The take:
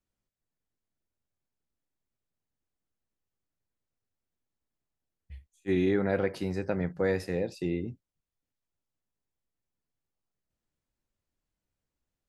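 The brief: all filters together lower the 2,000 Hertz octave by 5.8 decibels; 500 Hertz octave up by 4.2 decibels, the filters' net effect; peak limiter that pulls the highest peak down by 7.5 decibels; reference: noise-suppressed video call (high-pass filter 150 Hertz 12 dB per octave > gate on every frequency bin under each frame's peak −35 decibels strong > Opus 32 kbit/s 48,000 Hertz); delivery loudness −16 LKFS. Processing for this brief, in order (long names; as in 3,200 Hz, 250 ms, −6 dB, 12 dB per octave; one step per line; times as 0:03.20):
parametric band 500 Hz +5.5 dB
parametric band 2,000 Hz −7.5 dB
brickwall limiter −20.5 dBFS
high-pass filter 150 Hz 12 dB per octave
gate on every frequency bin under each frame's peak −35 dB strong
level +15.5 dB
Opus 32 kbit/s 48,000 Hz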